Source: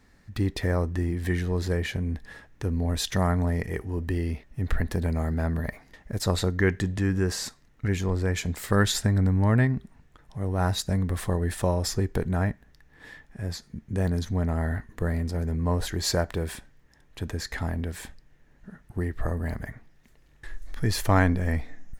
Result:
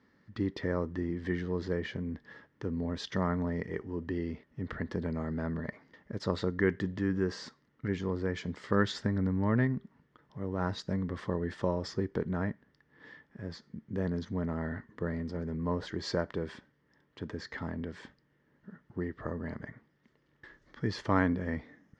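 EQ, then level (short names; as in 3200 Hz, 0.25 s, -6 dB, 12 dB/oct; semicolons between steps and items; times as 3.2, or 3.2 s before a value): speaker cabinet 160–4400 Hz, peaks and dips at 730 Hz -10 dB, 1600 Hz -3 dB, 2500 Hz -10 dB, 3900 Hz -8 dB; -2.5 dB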